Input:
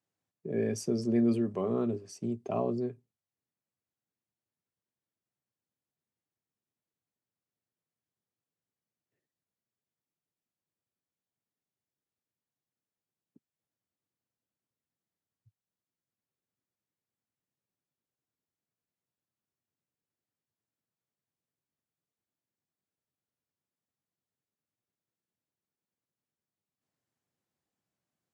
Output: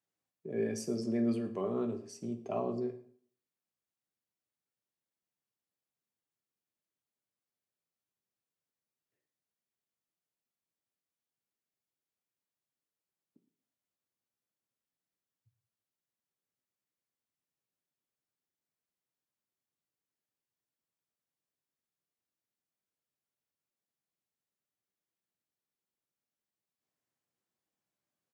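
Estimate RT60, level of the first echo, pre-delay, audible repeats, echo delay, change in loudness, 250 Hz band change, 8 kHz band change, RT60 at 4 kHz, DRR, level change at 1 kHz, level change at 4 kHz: 0.55 s, -20.5 dB, 8 ms, 1, 112 ms, -4.0 dB, -4.5 dB, -2.5 dB, 0.45 s, 7.0 dB, -2.5 dB, -2.5 dB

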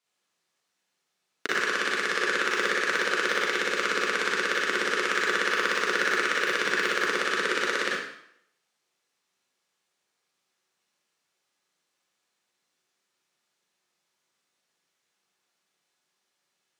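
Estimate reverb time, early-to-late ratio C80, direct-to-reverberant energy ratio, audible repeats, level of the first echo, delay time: 0.70 s, 3.5 dB, -6.0 dB, no echo, no echo, no echo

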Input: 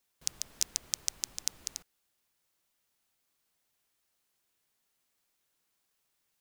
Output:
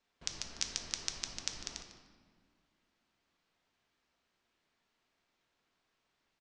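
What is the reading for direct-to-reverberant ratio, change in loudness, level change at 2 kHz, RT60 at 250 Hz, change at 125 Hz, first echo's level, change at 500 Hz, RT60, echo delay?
4.0 dB, -4.5 dB, +4.0 dB, 2.7 s, +5.0 dB, -14.5 dB, +5.5 dB, 1.8 s, 150 ms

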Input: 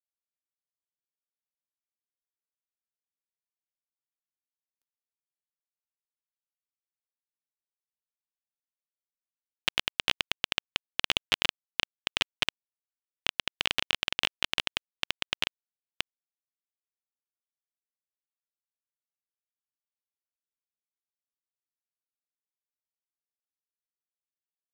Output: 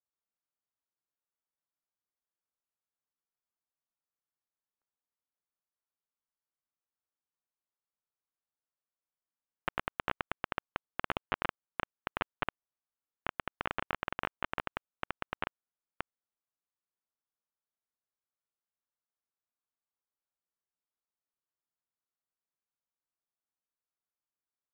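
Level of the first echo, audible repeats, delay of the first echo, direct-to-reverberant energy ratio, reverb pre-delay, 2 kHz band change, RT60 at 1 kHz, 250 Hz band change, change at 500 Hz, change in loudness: no echo, no echo, no echo, no reverb, no reverb, -6.5 dB, no reverb, +0.5 dB, +1.0 dB, -9.0 dB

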